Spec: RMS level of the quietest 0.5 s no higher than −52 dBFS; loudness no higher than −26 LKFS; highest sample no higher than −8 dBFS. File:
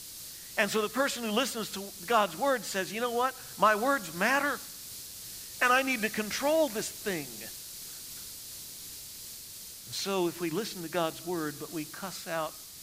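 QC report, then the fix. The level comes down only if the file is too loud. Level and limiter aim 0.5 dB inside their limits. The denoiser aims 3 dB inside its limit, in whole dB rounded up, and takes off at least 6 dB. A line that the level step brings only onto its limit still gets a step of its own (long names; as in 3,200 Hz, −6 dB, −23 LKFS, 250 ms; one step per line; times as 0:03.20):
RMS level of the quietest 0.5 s −45 dBFS: out of spec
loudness −31.0 LKFS: in spec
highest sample −12.5 dBFS: in spec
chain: broadband denoise 10 dB, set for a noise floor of −45 dBFS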